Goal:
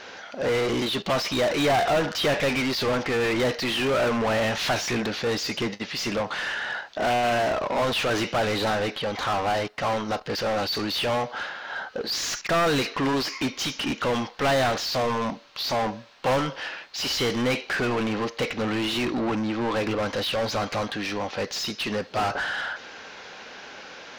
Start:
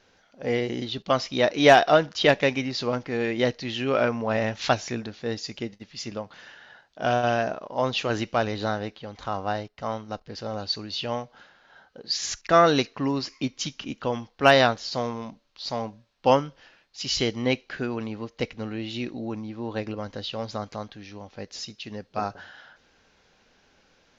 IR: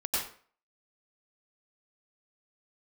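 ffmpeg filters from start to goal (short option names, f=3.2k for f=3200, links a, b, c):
-filter_complex "[0:a]volume=18.5dB,asoftclip=hard,volume=-18.5dB,asplit=2[a][b];[b]highpass=f=720:p=1,volume=30dB,asoftclip=type=tanh:threshold=-18dB[c];[a][c]amix=inputs=2:normalize=0,lowpass=f=3k:p=1,volume=-6dB"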